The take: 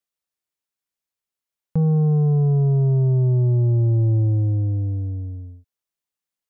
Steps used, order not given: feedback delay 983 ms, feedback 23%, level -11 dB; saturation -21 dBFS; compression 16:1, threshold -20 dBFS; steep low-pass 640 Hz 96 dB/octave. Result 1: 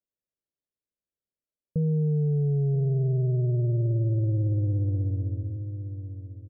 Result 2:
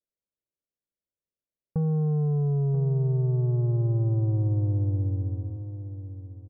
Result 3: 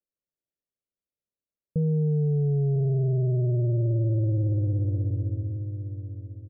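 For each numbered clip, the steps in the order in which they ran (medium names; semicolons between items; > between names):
compression > feedback delay > saturation > steep low-pass; steep low-pass > compression > saturation > feedback delay; feedback delay > saturation > steep low-pass > compression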